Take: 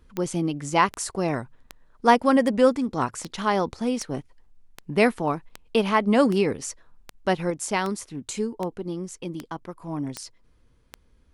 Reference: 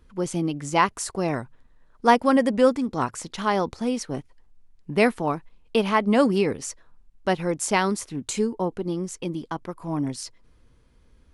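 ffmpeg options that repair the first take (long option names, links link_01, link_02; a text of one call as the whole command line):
ffmpeg -i in.wav -af "adeclick=threshold=4,asetnsamples=nb_out_samples=441:pad=0,asendcmd='7.5 volume volume 3.5dB',volume=0dB" out.wav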